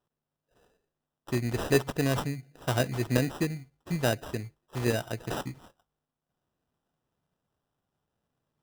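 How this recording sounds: aliases and images of a low sample rate 2.2 kHz, jitter 0%

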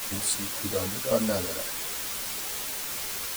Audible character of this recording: chopped level 1.8 Hz, depth 65%, duty 60%; a quantiser's noise floor 6-bit, dither triangular; a shimmering, thickened sound

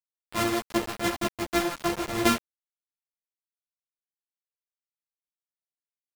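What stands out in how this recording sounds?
a buzz of ramps at a fixed pitch in blocks of 128 samples; tremolo triangle 2.8 Hz, depth 85%; a quantiser's noise floor 6-bit, dither none; a shimmering, thickened sound

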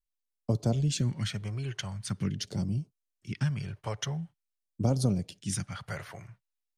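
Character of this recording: phasing stages 2, 0.45 Hz, lowest notch 220–1800 Hz

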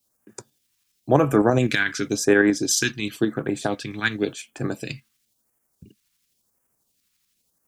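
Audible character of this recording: a quantiser's noise floor 12-bit, dither triangular; phasing stages 2, 0.94 Hz, lowest notch 560–3700 Hz; tremolo saw up 12 Hz, depth 45%

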